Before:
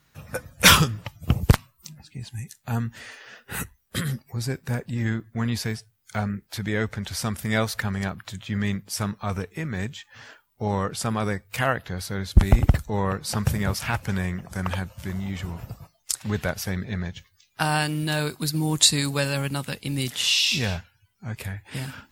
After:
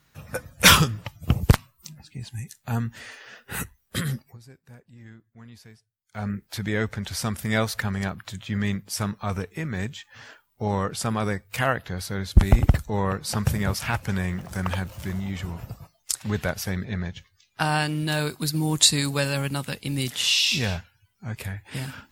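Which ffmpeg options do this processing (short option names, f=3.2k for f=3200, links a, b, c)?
-filter_complex "[0:a]asettb=1/sr,asplit=3[a][b][c];[a]atrim=end=14.284[d];[b]atrim=start=14.28:end=15.2,asetpts=PTS-STARTPTS,afade=t=in:d=0.004:c=qsin,afade=t=out:st=0.916:d=0.004:c=qsin,aeval=exprs='val(0)+0.5*0.00794*sgn(val(0))':c=same[e];[c]atrim=start=15.196[f];[d][e]acrossfade=d=0.004:c1=hsin:c2=qsin[g];[g][f]acrossfade=d=0.004:c1=qsin:c2=hsin,asettb=1/sr,asplit=3[h][i][j];[h]atrim=end=16.854[k];[i]atrim=start=16.85:end=18.08,asetpts=PTS-STARTPTS,afade=t=in:d=0.004:c=qsin,afade=t=out:st=1.226:d=0.004:c=qsin,highshelf=f=10k:g=-9.5[l];[j]atrim=start=18.076[m];[k][l]acrossfade=d=0.004:c1=hsin:c2=qsin[n];[n][m]acrossfade=d=0.004:c1=qsin:c2=hsin,asplit=3[o][p][q];[o]atrim=end=4.38,asetpts=PTS-STARTPTS,afade=t=out:st=4.21:d=0.17:silence=0.0944061[r];[p]atrim=start=4.38:end=6.12,asetpts=PTS-STARTPTS,volume=-20.5dB[s];[q]atrim=start=6.12,asetpts=PTS-STARTPTS,afade=t=in:d=0.17:silence=0.0944061[t];[r][s][t]concat=n=3:v=0:a=1"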